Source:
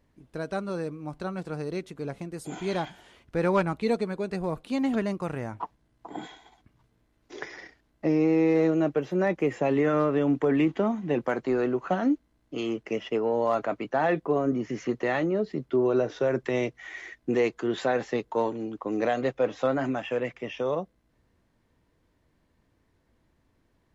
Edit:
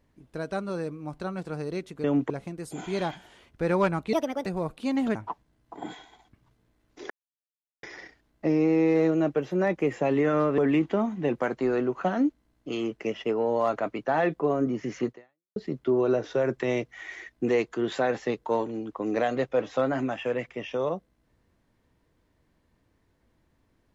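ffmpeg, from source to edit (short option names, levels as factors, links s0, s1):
-filter_complex "[0:a]asplit=9[s0][s1][s2][s3][s4][s5][s6][s7][s8];[s0]atrim=end=2.042[s9];[s1]atrim=start=10.178:end=10.442[s10];[s2]atrim=start=2.038:end=3.874[s11];[s3]atrim=start=3.87:end=4.33,asetpts=PTS-STARTPTS,asetrate=61299,aresample=44100,atrim=end_sample=14594,asetpts=PTS-STARTPTS[s12];[s4]atrim=start=4.326:end=5.022[s13];[s5]atrim=start=5.478:end=7.43,asetpts=PTS-STARTPTS,afade=t=out:st=1.948:d=0.004:c=hsin,apad=pad_dur=0.73[s14];[s6]atrim=start=7.43:end=10.182,asetpts=PTS-STARTPTS,afade=t=in:d=0.004:c=hsin[s15];[s7]atrim=start=10.438:end=15.42,asetpts=PTS-STARTPTS,afade=t=out:st=4.512:d=0.47:c=exp[s16];[s8]atrim=start=15.42,asetpts=PTS-STARTPTS,afade=t=in:d=0.004:c=hsin[s17];[s9][s10]acrossfade=d=0.004:c1=hsin:c2=hsin[s18];[s18][s11]acrossfade=d=0.004:c1=hsin:c2=hsin[s19];[s19][s12]acrossfade=d=0.004:c1=hsin:c2=hsin[s20];[s20][s13]acrossfade=d=0.004:c1=hsin:c2=hsin[s21];[s14][s15]concat=n=2:v=0:a=1[s22];[s21][s22]acrossfade=d=0.004:c1=hsin:c2=hsin[s23];[s16][s17]concat=n=2:v=0:a=1[s24];[s23][s24]acrossfade=d=0.004:c1=hsin:c2=hsin"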